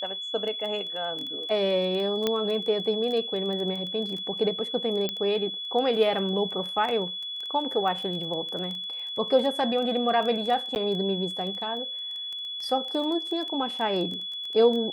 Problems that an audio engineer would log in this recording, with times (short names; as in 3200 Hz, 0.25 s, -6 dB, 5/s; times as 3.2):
crackle 13/s -31 dBFS
tone 3400 Hz -32 dBFS
2.27 pop -11 dBFS
5.09 pop -14 dBFS
10.75–10.76 gap 9.9 ms